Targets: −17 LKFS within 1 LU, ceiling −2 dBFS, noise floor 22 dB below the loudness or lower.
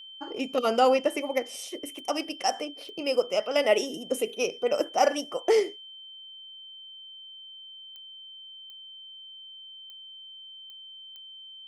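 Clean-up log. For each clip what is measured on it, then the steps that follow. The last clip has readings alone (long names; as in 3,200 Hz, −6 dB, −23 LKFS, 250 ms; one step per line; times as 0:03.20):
number of clicks 7; interfering tone 3,100 Hz; level of the tone −43 dBFS; integrated loudness −27.0 LKFS; sample peak −9.0 dBFS; target loudness −17.0 LKFS
→ click removal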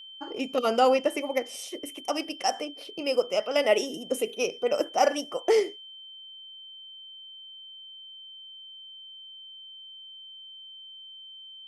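number of clicks 0; interfering tone 3,100 Hz; level of the tone −43 dBFS
→ notch filter 3,100 Hz, Q 30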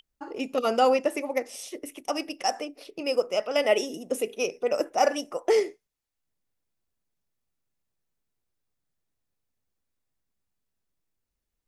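interfering tone none found; integrated loudness −27.0 LKFS; sample peak −9.0 dBFS; target loudness −17.0 LKFS
→ level +10 dB
brickwall limiter −2 dBFS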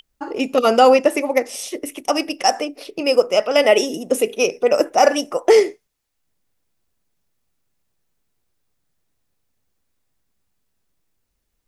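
integrated loudness −17.5 LKFS; sample peak −2.0 dBFS; background noise floor −73 dBFS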